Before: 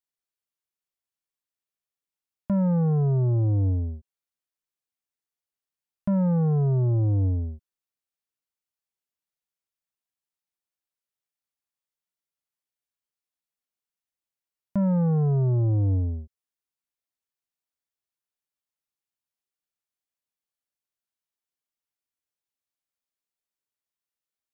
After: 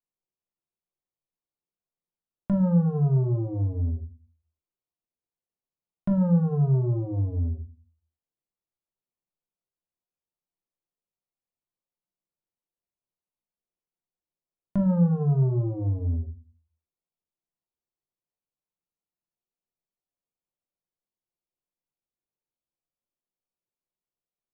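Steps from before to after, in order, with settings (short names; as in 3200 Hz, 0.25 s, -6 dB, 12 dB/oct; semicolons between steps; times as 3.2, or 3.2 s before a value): Wiener smoothing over 25 samples; compressor, threshold -27 dBFS, peak gain reduction 5.5 dB; shoebox room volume 170 m³, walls furnished, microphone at 0.93 m; gain +1.5 dB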